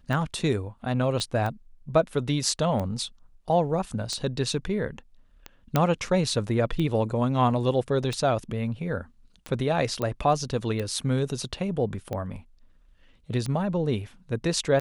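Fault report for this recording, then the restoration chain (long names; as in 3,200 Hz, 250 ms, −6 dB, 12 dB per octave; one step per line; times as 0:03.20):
scratch tick 45 rpm
0:01.20: click −17 dBFS
0:05.76: click −8 dBFS
0:10.02: click −16 dBFS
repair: click removal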